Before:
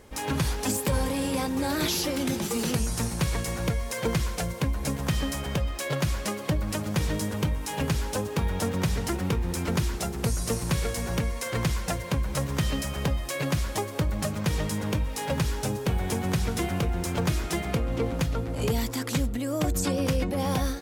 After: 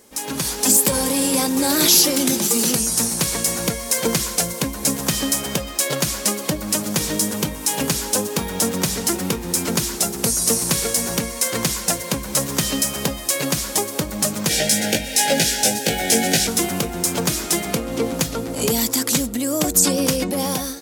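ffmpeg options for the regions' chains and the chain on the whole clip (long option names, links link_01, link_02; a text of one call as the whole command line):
ffmpeg -i in.wav -filter_complex "[0:a]asettb=1/sr,asplit=3[link_01][link_02][link_03];[link_01]atrim=end=14.494[link_04];[link_02]atrim=start=14.49:end=16.47,asetpts=PTS-STARTPTS,afade=type=in:duration=0.004:curve=qsin,afade=type=out:start_time=1.976:duration=0.004:curve=qsin,asuperstop=centerf=1100:order=8:qfactor=1.7,asplit=2[link_05][link_06];[link_06]highpass=frequency=720:poles=1,volume=13dB,asoftclip=type=tanh:threshold=-14dB[link_07];[link_05][link_07]amix=inputs=2:normalize=0,lowpass=frequency=4500:poles=1,volume=-6dB,asplit=2[link_08][link_09];[link_09]adelay=18,volume=-2dB[link_10];[link_08][link_10]amix=inputs=2:normalize=0,atrim=end_sample=87318[link_11];[link_03]atrim=start=16.466[link_12];[link_04][link_11]acrossfade=duration=0.004:curve1=hsin:curve2=qsin[link_13];[link_13][link_12]acrossfade=duration=0.004:curve1=qsin:curve2=hsin,equalizer=frequency=210:width=1:gain=11,dynaudnorm=framelen=110:gausssize=9:maxgain=11.5dB,bass=frequency=250:gain=-14,treble=frequency=4000:gain=13,volume=-2dB" out.wav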